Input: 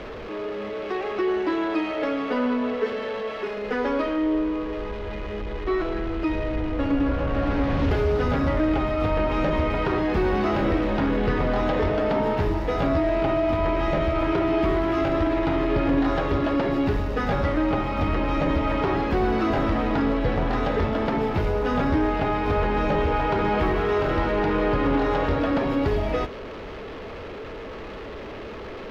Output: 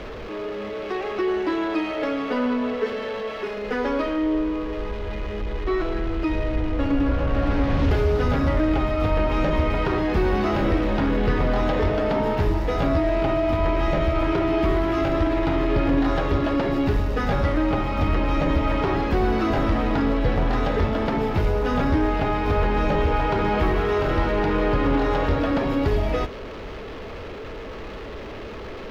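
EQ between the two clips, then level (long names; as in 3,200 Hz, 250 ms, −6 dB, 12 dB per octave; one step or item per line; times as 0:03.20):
low-shelf EQ 96 Hz +5.5 dB
high-shelf EQ 5,400 Hz +6 dB
0.0 dB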